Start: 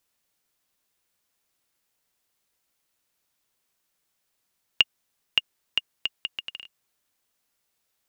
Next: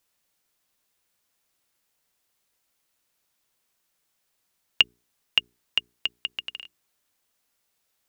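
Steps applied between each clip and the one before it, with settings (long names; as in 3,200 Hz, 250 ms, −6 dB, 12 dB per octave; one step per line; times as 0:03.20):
mains-hum notches 60/120/180/240/300/360/420 Hz
level +1.5 dB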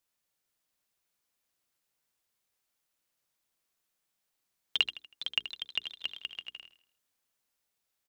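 repeating echo 80 ms, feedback 39%, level −12 dB
delay with pitch and tempo change per echo 474 ms, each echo +2 semitones, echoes 3, each echo −6 dB
level −8.5 dB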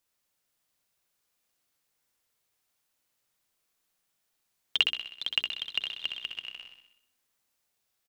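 repeating echo 63 ms, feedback 57%, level −6.5 dB
level +2.5 dB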